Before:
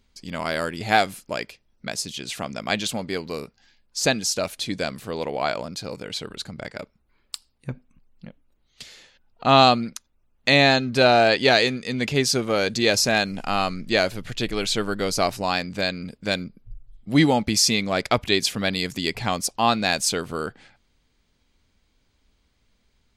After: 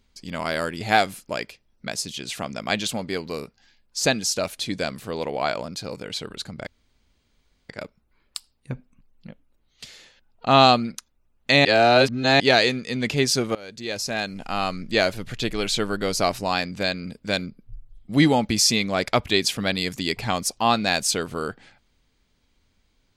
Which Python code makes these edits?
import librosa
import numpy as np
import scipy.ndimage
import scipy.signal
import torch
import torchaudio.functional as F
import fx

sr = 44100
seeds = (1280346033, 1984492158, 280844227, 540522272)

y = fx.edit(x, sr, fx.insert_room_tone(at_s=6.67, length_s=1.02),
    fx.reverse_span(start_s=10.63, length_s=0.75),
    fx.fade_in_from(start_s=12.53, length_s=1.42, floor_db=-22.0), tone=tone)